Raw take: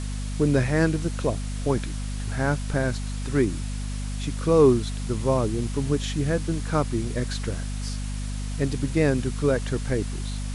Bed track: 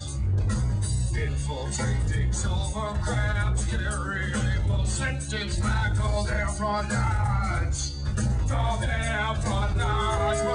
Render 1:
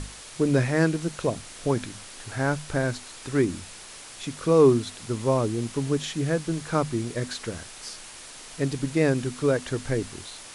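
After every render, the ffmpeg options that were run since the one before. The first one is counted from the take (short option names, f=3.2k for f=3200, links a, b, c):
-af "bandreject=f=50:t=h:w=6,bandreject=f=100:t=h:w=6,bandreject=f=150:t=h:w=6,bandreject=f=200:t=h:w=6,bandreject=f=250:t=h:w=6"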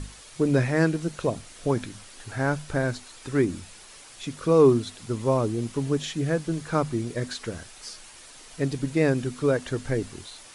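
-af "afftdn=nr=6:nf=-44"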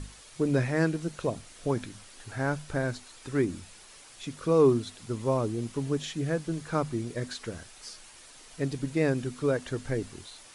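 -af "volume=-4dB"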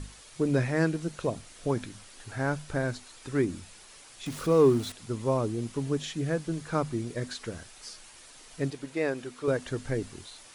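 -filter_complex "[0:a]asettb=1/sr,asplit=3[a][b][c];[a]atrim=end=4.264[d];[b]atrim=start=4.26:end=4.92,asetpts=PTS-STARTPTS,afade=t=in:d=0.004:c=qsin,afade=t=out:st=0.656:d=0.004:c=qsin,aeval=exprs='val(0)+0.5*0.0126*sgn(val(0))':c=same[e];[c]atrim=start=4.916[f];[d][e]acrossfade=d=0.004:c1=hsin:c2=qsin[g];[g][f]acrossfade=d=0.004:c1=qsin:c2=hsin,asettb=1/sr,asplit=3[h][i][j];[h]atrim=end=8.704[k];[i]atrim=start=8.7:end=9.48,asetpts=PTS-STARTPTS,afade=t=in:d=0.004:c=qsin,afade=t=out:st=0.776:d=0.004:c=qsin,bass=f=250:g=-15,treble=f=4k:g=-4[l];[j]atrim=start=9.476[m];[k][l]acrossfade=d=0.004:c1=hsin:c2=qsin[n];[n][m]acrossfade=d=0.004:c1=qsin:c2=hsin"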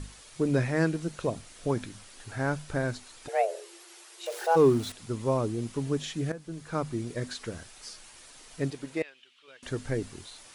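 -filter_complex "[0:a]asplit=3[a][b][c];[a]afade=t=out:st=3.27:d=0.02[d];[b]afreqshift=330,afade=t=in:st=3.27:d=0.02,afade=t=out:st=4.55:d=0.02[e];[c]afade=t=in:st=4.55:d=0.02[f];[d][e][f]amix=inputs=3:normalize=0,asettb=1/sr,asplit=3[g][h][i];[g]atrim=end=9.024[j];[h]atrim=start=9.02:end=9.63,asetpts=PTS-STARTPTS,afade=t=in:d=0.004:c=qsin,afade=t=out:st=0.606:d=0.004:c=qsin,bandpass=f=3k:t=q:w=4.7[k];[i]atrim=start=9.626[l];[j][k]acrossfade=d=0.004:c1=hsin:c2=qsin[m];[m][l]acrossfade=d=0.004:c1=qsin:c2=hsin,asplit=2[n][o];[n]atrim=end=6.32,asetpts=PTS-STARTPTS,afade=t=out:st=6.316:d=0.004:c=hsin:silence=0.188365[p];[o]atrim=start=6.32,asetpts=PTS-STARTPTS,afade=t=in:d=0.95:c=qsin:silence=0.188365[q];[p][q]concat=n=2:v=0:a=1"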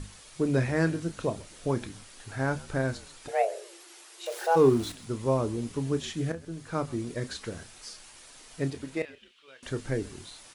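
-filter_complex "[0:a]asplit=2[a][b];[b]adelay=30,volume=-12.5dB[c];[a][c]amix=inputs=2:normalize=0,asplit=3[d][e][f];[e]adelay=130,afreqshift=-56,volume=-21.5dB[g];[f]adelay=260,afreqshift=-112,volume=-31.7dB[h];[d][g][h]amix=inputs=3:normalize=0"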